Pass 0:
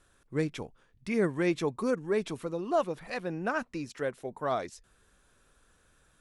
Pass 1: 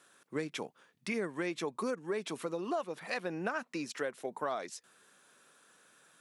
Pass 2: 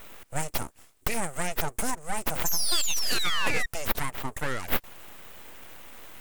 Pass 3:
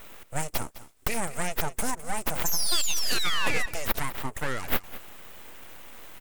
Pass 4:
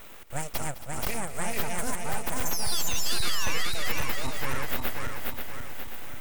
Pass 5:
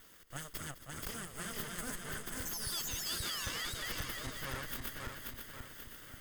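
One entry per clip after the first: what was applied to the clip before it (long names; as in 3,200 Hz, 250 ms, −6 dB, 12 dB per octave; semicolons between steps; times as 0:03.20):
high-pass filter 160 Hz 24 dB per octave; low-shelf EQ 450 Hz −7.5 dB; downward compressor 6 to 1, threshold −37 dBFS, peak gain reduction 12 dB; level +5 dB
high shelf with overshoot 5,700 Hz +13 dB, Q 3; sound drawn into the spectrogram fall, 0:02.45–0:03.66, 920–6,900 Hz −31 dBFS; full-wave rectification; level +7.5 dB
single-tap delay 207 ms −16 dB
feedback delay that plays each chunk backwards 267 ms, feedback 62%, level −0.5 dB; downward compressor 1.5 to 1, threshold −29 dBFS, peak gain reduction 6.5 dB
lower of the sound and its delayed copy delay 0.61 ms; level −6.5 dB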